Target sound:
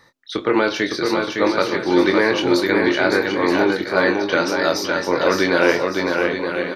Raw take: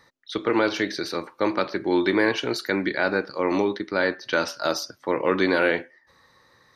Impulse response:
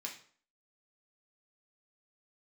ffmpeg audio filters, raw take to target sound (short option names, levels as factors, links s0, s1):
-filter_complex "[0:a]asplit=2[s0][s1];[s1]adelay=23,volume=0.422[s2];[s0][s2]amix=inputs=2:normalize=0,asplit=2[s3][s4];[s4]aecho=0:1:560|924|1161|1314|1414:0.631|0.398|0.251|0.158|0.1[s5];[s3][s5]amix=inputs=2:normalize=0,volume=1.5"